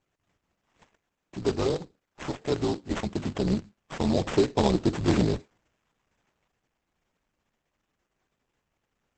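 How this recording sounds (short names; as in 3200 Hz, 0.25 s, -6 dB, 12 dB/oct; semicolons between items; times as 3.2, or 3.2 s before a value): aliases and images of a low sample rate 4400 Hz, jitter 20%; Opus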